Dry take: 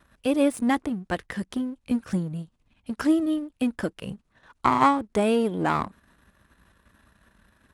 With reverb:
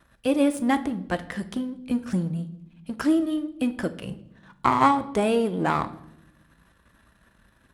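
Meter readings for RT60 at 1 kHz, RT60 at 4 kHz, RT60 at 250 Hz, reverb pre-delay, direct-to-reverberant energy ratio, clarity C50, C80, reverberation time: 0.65 s, 0.60 s, 1.3 s, 6 ms, 10.0 dB, 15.5 dB, 18.5 dB, 0.80 s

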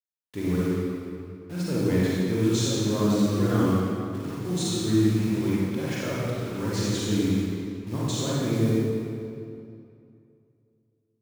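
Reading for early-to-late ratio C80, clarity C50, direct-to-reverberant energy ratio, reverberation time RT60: -2.5 dB, -5.5 dB, -8.0 dB, 2.6 s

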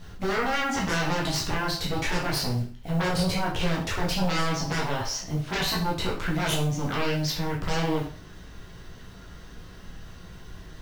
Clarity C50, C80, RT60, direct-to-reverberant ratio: 6.5 dB, 10.5 dB, 0.45 s, -4.0 dB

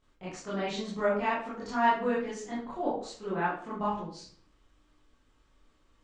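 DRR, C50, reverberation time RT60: -10.0 dB, 3.0 dB, 0.55 s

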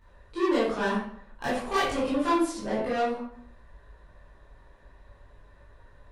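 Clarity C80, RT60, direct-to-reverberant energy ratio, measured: 5.5 dB, 0.65 s, -11.0 dB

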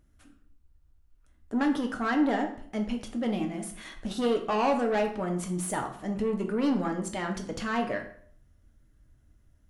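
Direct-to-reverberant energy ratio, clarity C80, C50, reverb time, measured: 3.0 dB, 13.5 dB, 9.5 dB, 0.55 s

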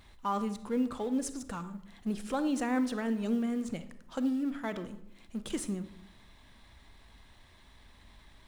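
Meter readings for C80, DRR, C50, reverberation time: 16.0 dB, 11.5 dB, 13.0 dB, 0.80 s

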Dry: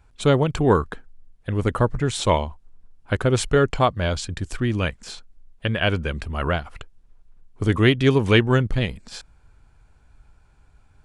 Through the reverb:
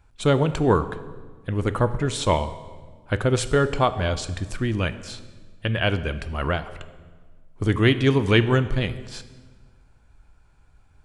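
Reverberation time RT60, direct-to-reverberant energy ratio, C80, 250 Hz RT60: 1.5 s, 11.5 dB, 15.0 dB, 1.9 s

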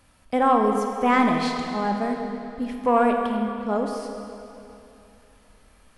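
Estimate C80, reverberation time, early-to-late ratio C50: 4.5 dB, 2.9 s, 3.5 dB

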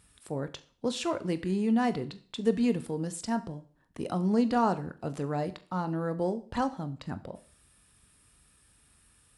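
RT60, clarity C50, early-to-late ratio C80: 0.45 s, 18.0 dB, 20.5 dB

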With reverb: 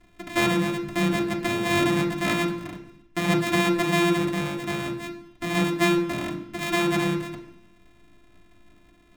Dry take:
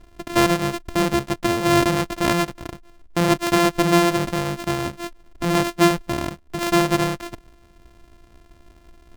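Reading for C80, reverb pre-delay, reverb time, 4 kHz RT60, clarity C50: 11.0 dB, 3 ms, 0.70 s, 0.95 s, 8.5 dB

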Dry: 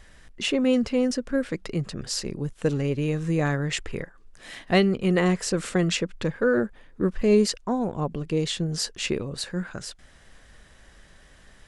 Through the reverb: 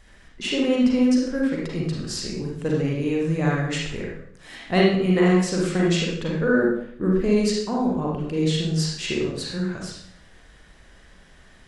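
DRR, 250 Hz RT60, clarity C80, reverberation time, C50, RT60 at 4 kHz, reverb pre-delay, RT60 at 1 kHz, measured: -3.5 dB, 0.80 s, 5.0 dB, 0.65 s, 0.0 dB, 0.55 s, 35 ms, 0.65 s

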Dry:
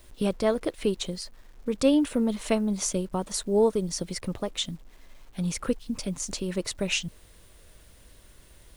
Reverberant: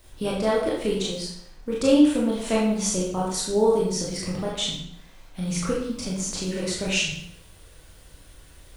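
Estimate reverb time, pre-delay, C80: 0.70 s, 20 ms, 5.5 dB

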